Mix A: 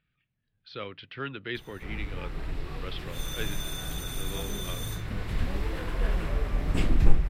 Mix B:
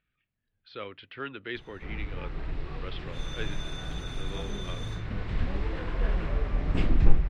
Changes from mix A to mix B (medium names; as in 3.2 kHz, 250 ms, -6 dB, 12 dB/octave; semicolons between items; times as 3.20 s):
speech: add peaking EQ 140 Hz -8.5 dB 1 oct; master: add distance through air 140 m